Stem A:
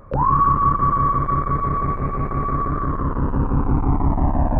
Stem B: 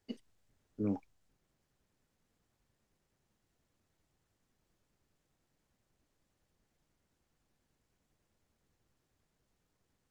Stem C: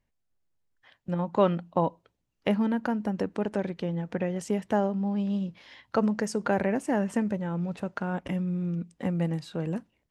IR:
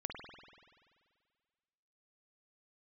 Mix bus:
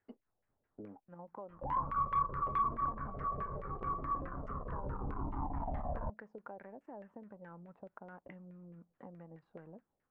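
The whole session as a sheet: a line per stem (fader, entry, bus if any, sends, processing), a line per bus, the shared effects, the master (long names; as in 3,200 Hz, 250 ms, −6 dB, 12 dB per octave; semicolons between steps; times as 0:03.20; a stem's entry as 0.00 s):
−18.0 dB, 1.50 s, no bus, no send, flanger whose copies keep moving one way falling 0.79 Hz
−3.0 dB, 0.00 s, bus A, no send, no processing
−18.5 dB, 0.00 s, bus A, no send, no processing
bus A: 0.0 dB, downward compressor 6 to 1, threshold −52 dBFS, peak gain reduction 18 dB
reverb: not used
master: low-shelf EQ 210 Hz −5.5 dB; leveller curve on the samples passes 1; auto-filter low-pass saw down 4.7 Hz 530–2,000 Hz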